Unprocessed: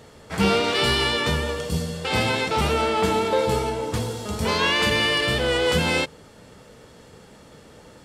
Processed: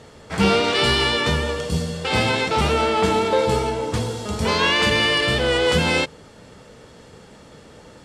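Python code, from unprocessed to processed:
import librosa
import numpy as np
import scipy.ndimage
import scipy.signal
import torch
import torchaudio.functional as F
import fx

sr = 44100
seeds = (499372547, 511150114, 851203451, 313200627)

y = scipy.signal.sosfilt(scipy.signal.butter(2, 9500.0, 'lowpass', fs=sr, output='sos'), x)
y = y * 10.0 ** (2.5 / 20.0)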